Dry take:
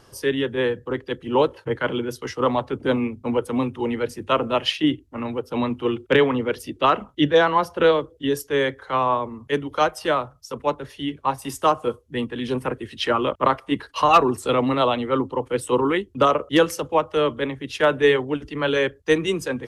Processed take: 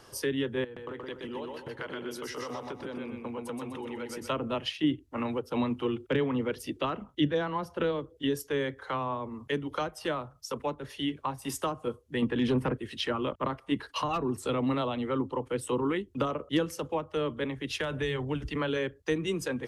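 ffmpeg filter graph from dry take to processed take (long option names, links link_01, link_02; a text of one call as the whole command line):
ffmpeg -i in.wav -filter_complex "[0:a]asettb=1/sr,asplit=3[link_01][link_02][link_03];[link_01]atrim=end=0.644[link_04];[link_02]atrim=start=0.64:end=4.3,asetpts=PTS-STARTPTS,afade=type=in:duration=0.004:curve=qsin,afade=type=out:start_time=3.656:duration=0.004:curve=qsin,agate=range=-33dB:threshold=-45dB:ratio=3:release=100:detection=peak,acompressor=threshold=-33dB:ratio=20:attack=3.2:release=140:knee=1:detection=peak,aecho=1:1:124|248|372|496|620:0.708|0.283|0.113|0.0453|0.0181,atrim=end_sample=161406[link_05];[link_03]atrim=start=4.296[link_06];[link_04][link_05]acrossfade=duration=0.004:curve1=hsin:curve2=qsin[link_07];[link_07][link_06]acrossfade=duration=0.004:curve1=qsin:curve2=hsin,asettb=1/sr,asplit=3[link_08][link_09][link_10];[link_08]atrim=end=12.224[link_11];[link_09]atrim=start=12.22:end=12.77,asetpts=PTS-STARTPTS,afade=type=in:duration=0.004:curve=qsin,afade=type=out:start_time=0.546:duration=0.004:curve=qsin,aeval=exprs='0.251*sin(PI/2*1.41*val(0)/0.251)':channel_layout=same,highshelf=frequency=4000:gain=-9[link_12];[link_10]atrim=start=12.766[link_13];[link_11][link_12]acrossfade=duration=0.004:curve1=hsin:curve2=qsin[link_14];[link_14][link_13]acrossfade=duration=0.004:curve1=qsin:curve2=hsin,asettb=1/sr,asplit=3[link_15][link_16][link_17];[link_15]atrim=end=17.444[link_18];[link_16]atrim=start=17.44:end=18.56,asetpts=PTS-STARTPTS,afade=type=in:duration=0.004:curve=qsin,afade=type=out:start_time=1.116:duration=0.004:curve=qsin,asubboost=boost=12:cutoff=140,acrossover=split=160|3000[link_19][link_20][link_21];[link_20]acompressor=threshold=-21dB:ratio=6:attack=3.2:release=140:knee=2.83:detection=peak[link_22];[link_19][link_22][link_21]amix=inputs=3:normalize=0[link_23];[link_17]atrim=start=18.556[link_24];[link_18][link_23]acrossfade=duration=0.004:curve1=hsin:curve2=qsin[link_25];[link_25][link_24]acrossfade=duration=0.004:curve1=qsin:curve2=hsin,lowshelf=frequency=220:gain=-6.5,acrossover=split=270[link_26][link_27];[link_27]acompressor=threshold=-31dB:ratio=6[link_28];[link_26][link_28]amix=inputs=2:normalize=0" out.wav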